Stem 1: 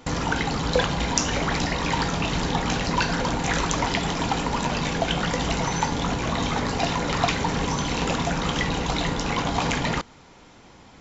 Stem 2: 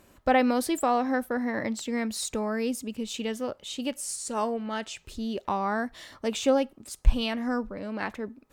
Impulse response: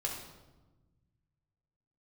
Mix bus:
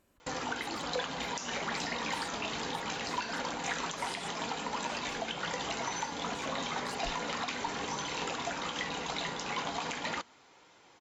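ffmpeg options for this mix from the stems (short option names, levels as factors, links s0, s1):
-filter_complex "[0:a]highpass=f=560:p=1,bandreject=f=5600:w=28,flanger=delay=1.9:depth=3.5:regen=-63:speed=0.38:shape=triangular,adelay=200,volume=0.708[s0];[1:a]acompressor=threshold=0.0178:ratio=2,volume=0.224[s1];[s0][s1]amix=inputs=2:normalize=0,alimiter=limit=0.0708:level=0:latency=1:release=153"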